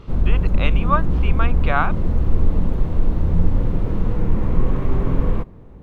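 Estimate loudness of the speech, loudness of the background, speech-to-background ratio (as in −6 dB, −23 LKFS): −25.5 LKFS, −22.5 LKFS, −3.0 dB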